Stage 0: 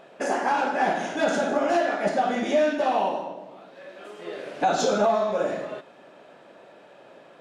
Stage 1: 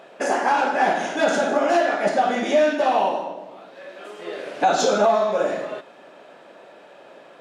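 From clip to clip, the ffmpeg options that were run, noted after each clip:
-af "highpass=f=250:p=1,volume=4.5dB"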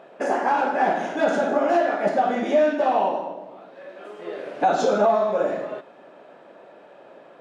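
-af "highshelf=f=2.3k:g=-11.5"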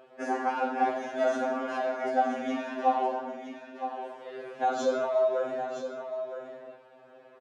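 -af "aecho=1:1:966:0.335,afftfilt=real='re*2.45*eq(mod(b,6),0)':imag='im*2.45*eq(mod(b,6),0)':win_size=2048:overlap=0.75,volume=-5dB"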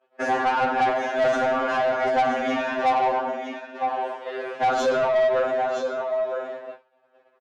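-filter_complex "[0:a]agate=range=-33dB:threshold=-41dB:ratio=3:detection=peak,asplit=2[a][b];[b]highpass=f=720:p=1,volume=20dB,asoftclip=type=tanh:threshold=-13dB[c];[a][c]amix=inputs=2:normalize=0,lowpass=f=3.1k:p=1,volume=-6dB"

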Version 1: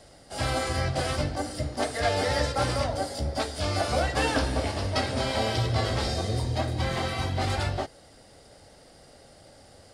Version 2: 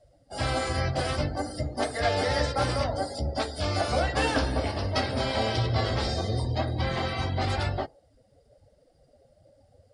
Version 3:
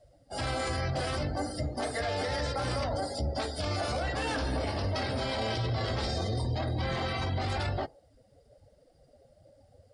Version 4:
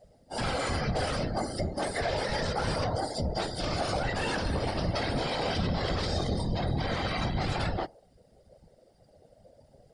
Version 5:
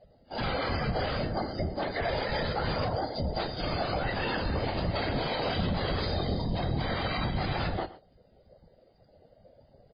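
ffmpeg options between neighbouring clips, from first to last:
-af "afftdn=nr=20:nf=-43"
-af "alimiter=limit=-23.5dB:level=0:latency=1:release=13"
-af "afftfilt=real='hypot(re,im)*cos(2*PI*random(0))':imag='hypot(re,im)*sin(2*PI*random(1))':win_size=512:overlap=0.75,volume=7.5dB"
-af "aecho=1:1:120:0.141" -ar 11025 -c:a libmp3lame -b:a 16k

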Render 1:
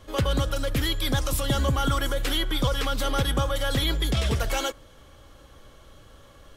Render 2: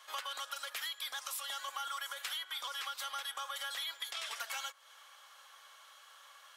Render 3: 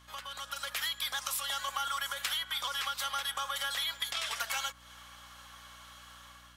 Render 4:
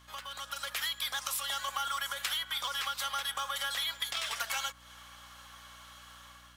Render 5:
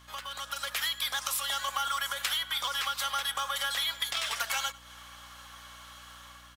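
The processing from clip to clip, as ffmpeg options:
-af "highpass=f=920:w=0.5412,highpass=f=920:w=1.3066,acompressor=threshold=-38dB:ratio=6"
-af "dynaudnorm=f=210:g=5:m=8.5dB,aeval=exprs='0.15*(cos(1*acos(clip(val(0)/0.15,-1,1)))-cos(1*PI/2))+0.015*(cos(3*acos(clip(val(0)/0.15,-1,1)))-cos(3*PI/2))':c=same,aeval=exprs='val(0)+0.001*(sin(2*PI*60*n/s)+sin(2*PI*2*60*n/s)/2+sin(2*PI*3*60*n/s)/3+sin(2*PI*4*60*n/s)/4+sin(2*PI*5*60*n/s)/5)':c=same"
-af "acrusher=bits=6:mode=log:mix=0:aa=0.000001"
-af "aecho=1:1:97:0.0891,volume=3dB"

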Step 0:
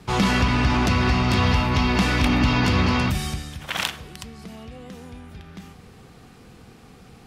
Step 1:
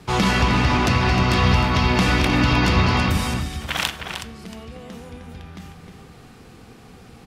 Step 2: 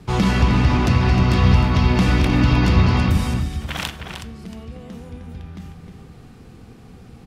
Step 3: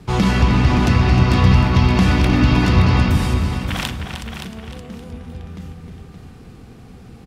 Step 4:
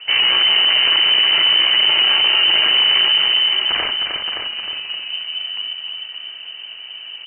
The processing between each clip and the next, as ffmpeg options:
-filter_complex "[0:a]bandreject=f=50:t=h:w=6,bandreject=f=100:t=h:w=6,bandreject=f=150:t=h:w=6,bandreject=f=200:t=h:w=6,bandreject=f=250:t=h:w=6,asplit=2[a][b];[b]adelay=309,volume=-6dB,highshelf=f=4k:g=-6.95[c];[a][c]amix=inputs=2:normalize=0,volume=2dB"
-af "lowshelf=f=350:g=9.5,volume=-4.5dB"
-af "aecho=1:1:571|1142:0.376|0.0601,volume=1.5dB"
-af "asoftclip=type=tanh:threshold=-18.5dB,lowpass=f=2.6k:t=q:w=0.5098,lowpass=f=2.6k:t=q:w=0.6013,lowpass=f=2.6k:t=q:w=0.9,lowpass=f=2.6k:t=q:w=2.563,afreqshift=-3100,volume=6.5dB"

